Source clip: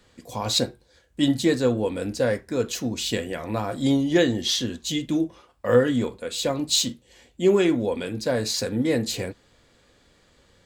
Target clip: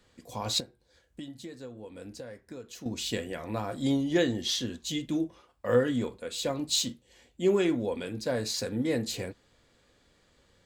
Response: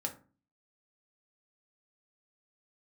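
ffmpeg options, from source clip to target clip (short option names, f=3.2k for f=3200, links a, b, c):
-filter_complex "[0:a]asettb=1/sr,asplit=3[a][b][c];[a]atrim=end=0.604[d];[b]atrim=start=0.6:end=2.86,asetpts=PTS-STARTPTS,afade=t=in:d=0.004:c=qsin,afade=t=out:st=2.256:d=0.004:c=qsin,acompressor=threshold=-34dB:ratio=10[e];[c]atrim=start=2.856[f];[d][e]acrossfade=d=0.004:c1=hsin:c2=qsin[g];[g][f]acrossfade=d=0.004:c1=qsin:c2=hsin,volume=-6dB"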